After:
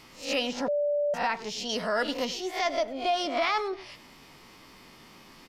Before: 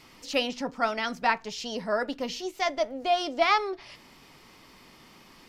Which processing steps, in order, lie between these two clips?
reverse spectral sustain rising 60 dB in 0.34 s; 1.69–2.25 s: treble shelf 2.1 kHz +8 dB; peak limiter -17.5 dBFS, peak gain reduction 8 dB; speakerphone echo 100 ms, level -15 dB; 0.68–1.14 s: bleep 584 Hz -23.5 dBFS

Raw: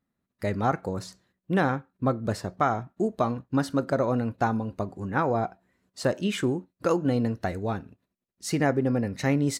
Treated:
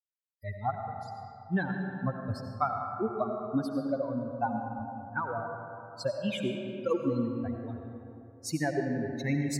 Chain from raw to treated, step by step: expander on every frequency bin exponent 3; on a send: reverberation RT60 2.9 s, pre-delay 45 ms, DRR 3 dB

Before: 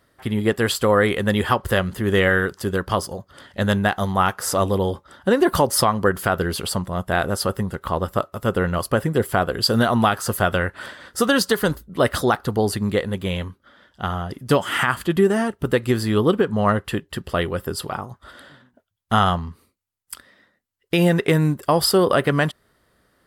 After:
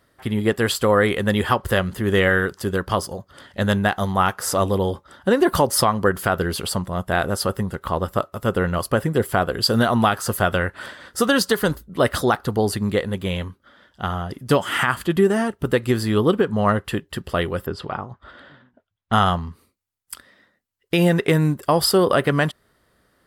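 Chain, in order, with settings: 17.66–19.13 s: low-pass 3.3 kHz 12 dB/octave

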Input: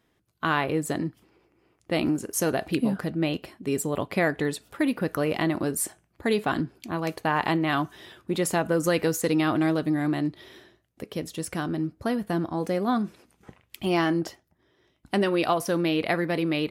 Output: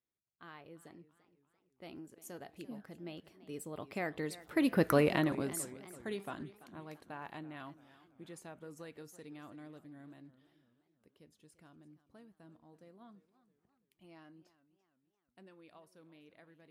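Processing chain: Doppler pass-by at 4.89 s, 17 m/s, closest 3.1 m; modulated delay 338 ms, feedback 48%, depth 143 cents, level -17 dB

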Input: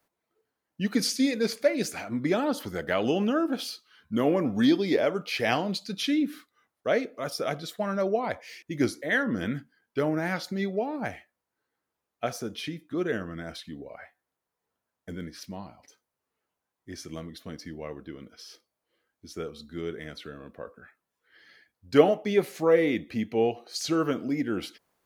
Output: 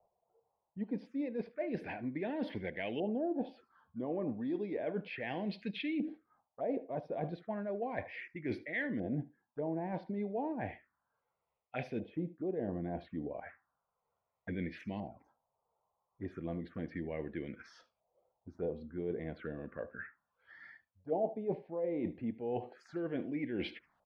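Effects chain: reverse; compression 20:1, threshold -34 dBFS, peak gain reduction 23.5 dB; reverse; LFO low-pass saw up 0.32 Hz 660–2300 Hz; speed mistake 24 fps film run at 25 fps; delay 75 ms -19.5 dB; touch-sensitive phaser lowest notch 280 Hz, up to 1.3 kHz, full sweep at -37 dBFS; trim +1.5 dB

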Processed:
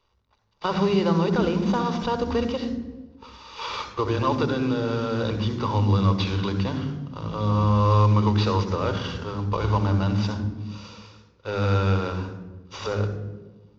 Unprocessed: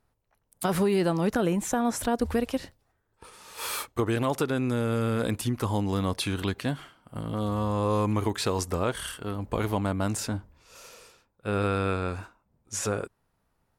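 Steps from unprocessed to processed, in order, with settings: CVSD coder 32 kbps; reverberation RT60 1.2 s, pre-delay 57 ms, DRR 8.5 dB

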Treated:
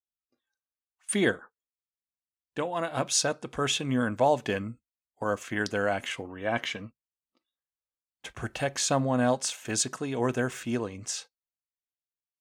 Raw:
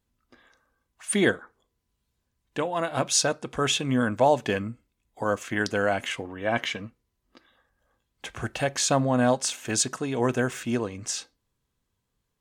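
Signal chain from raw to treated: spectral noise reduction 18 dB; gate -41 dBFS, range -16 dB; trim -3 dB

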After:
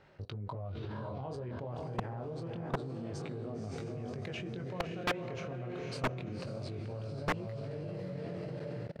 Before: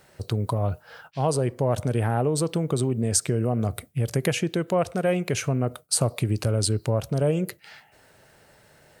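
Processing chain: distance through air 230 m; echo that smears into a reverb 537 ms, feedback 47%, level -4 dB; chorus 0.27 Hz, delay 19.5 ms, depth 5.7 ms; de-hum 250 Hz, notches 7; level held to a coarse grid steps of 22 dB; wavefolder -28 dBFS; trim +4 dB

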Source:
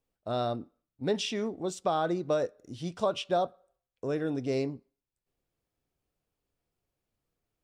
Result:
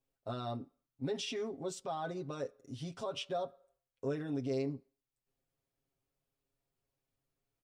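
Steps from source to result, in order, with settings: peak limiter -26 dBFS, peak gain reduction 10 dB; comb 7.4 ms, depth 86%; trim -6 dB

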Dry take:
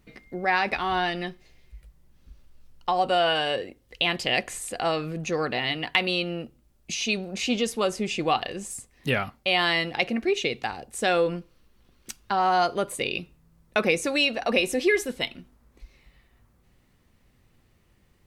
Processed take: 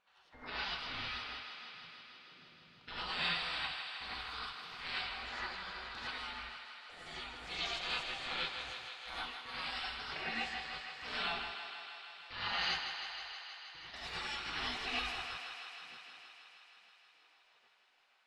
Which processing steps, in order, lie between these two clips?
spectral gate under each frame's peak -25 dB weak; level-controlled noise filter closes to 2.7 kHz, open at -21.5 dBFS; 12.74–13.94 s: compression 5:1, threshold -59 dBFS, peak gain reduction 19.5 dB; on a send: thinning echo 158 ms, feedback 81%, high-pass 330 Hz, level -7.5 dB; on the sum: gated-style reverb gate 130 ms rising, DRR -7 dB; trim -2.5 dB

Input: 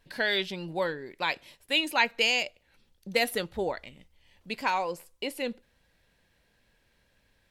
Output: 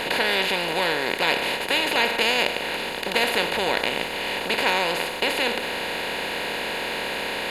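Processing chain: spectral levelling over time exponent 0.2; trim -3 dB

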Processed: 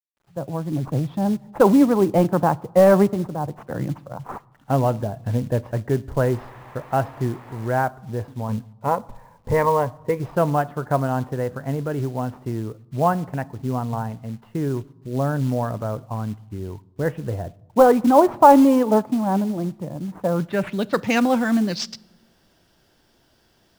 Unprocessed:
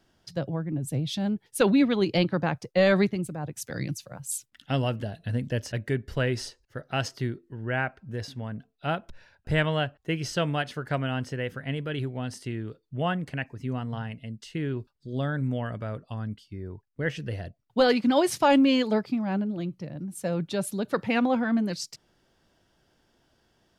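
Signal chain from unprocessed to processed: fade-in on the opening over 0.82 s; 6.27–7.68 s: painted sound noise 1.6–11 kHz -40 dBFS; 8.48–10.20 s: rippled EQ curve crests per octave 0.95, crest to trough 13 dB; in parallel at -5 dB: sample-rate reducer 8.9 kHz, jitter 0%; on the sum: low-pass sweep 970 Hz -> 5.4 kHz, 20.25–20.99 s; companded quantiser 6-bit; on a send at -22 dB: reverberation RT60 1.0 s, pre-delay 3 ms; on the sum: trim +1.5 dB

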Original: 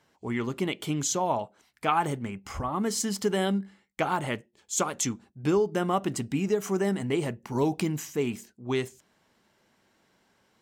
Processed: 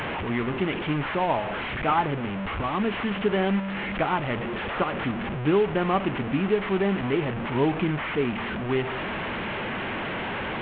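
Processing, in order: one-bit delta coder 16 kbps, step -26.5 dBFS; trim +2.5 dB

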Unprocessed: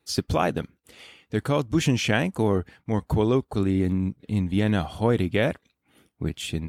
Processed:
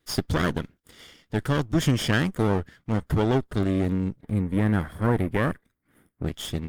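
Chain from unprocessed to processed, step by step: comb filter that takes the minimum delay 0.6 ms; 4.21–6.24 s: high-order bell 4.4 kHz -11.5 dB

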